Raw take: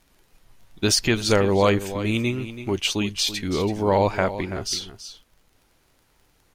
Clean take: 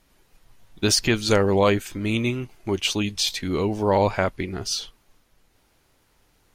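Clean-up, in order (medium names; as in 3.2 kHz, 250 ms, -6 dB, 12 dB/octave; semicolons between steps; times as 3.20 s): de-click; inverse comb 331 ms -12.5 dB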